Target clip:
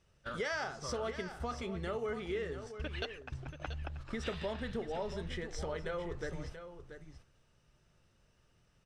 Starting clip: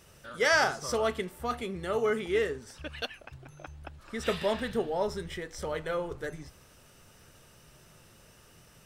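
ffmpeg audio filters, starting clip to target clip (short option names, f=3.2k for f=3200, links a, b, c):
-filter_complex "[0:a]lowpass=6.2k,lowshelf=f=94:g=9.5,agate=range=-22dB:threshold=-45dB:ratio=16:detection=peak,acompressor=threshold=-45dB:ratio=4,asplit=2[a][b];[b]aecho=0:1:683:0.299[c];[a][c]amix=inputs=2:normalize=0,volume=6.5dB"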